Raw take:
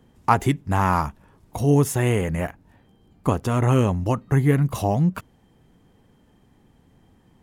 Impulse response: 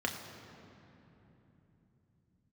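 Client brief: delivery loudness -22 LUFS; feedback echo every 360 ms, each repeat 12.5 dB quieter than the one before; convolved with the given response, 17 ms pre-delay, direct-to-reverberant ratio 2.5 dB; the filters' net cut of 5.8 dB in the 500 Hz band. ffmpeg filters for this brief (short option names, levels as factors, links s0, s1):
-filter_complex "[0:a]equalizer=f=500:t=o:g=-7.5,aecho=1:1:360|720|1080:0.237|0.0569|0.0137,asplit=2[s0][s1];[1:a]atrim=start_sample=2205,adelay=17[s2];[s1][s2]afir=irnorm=-1:irlink=0,volume=0.376[s3];[s0][s3]amix=inputs=2:normalize=0,volume=0.944"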